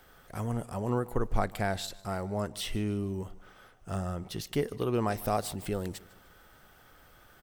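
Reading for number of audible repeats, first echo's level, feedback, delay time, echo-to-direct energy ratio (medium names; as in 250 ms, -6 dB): 2, -21.0 dB, 38%, 151 ms, -20.5 dB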